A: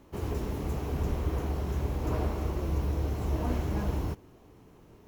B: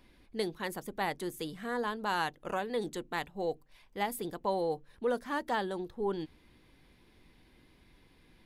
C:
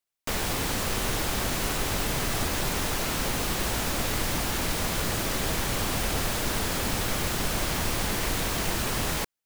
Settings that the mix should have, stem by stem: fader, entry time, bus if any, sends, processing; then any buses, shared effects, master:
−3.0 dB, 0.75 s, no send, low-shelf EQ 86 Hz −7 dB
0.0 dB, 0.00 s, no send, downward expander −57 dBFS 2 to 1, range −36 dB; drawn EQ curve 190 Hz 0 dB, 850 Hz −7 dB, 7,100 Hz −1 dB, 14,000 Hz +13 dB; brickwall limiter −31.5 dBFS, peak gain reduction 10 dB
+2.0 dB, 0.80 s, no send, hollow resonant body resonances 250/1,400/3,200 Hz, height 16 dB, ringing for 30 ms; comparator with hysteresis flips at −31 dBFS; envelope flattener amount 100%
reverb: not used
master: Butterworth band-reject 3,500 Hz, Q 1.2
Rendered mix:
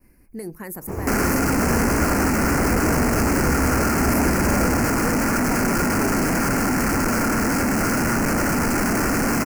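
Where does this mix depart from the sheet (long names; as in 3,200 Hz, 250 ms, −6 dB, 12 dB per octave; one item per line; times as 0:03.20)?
stem A −3.0 dB → +7.5 dB
stem B 0.0 dB → +9.0 dB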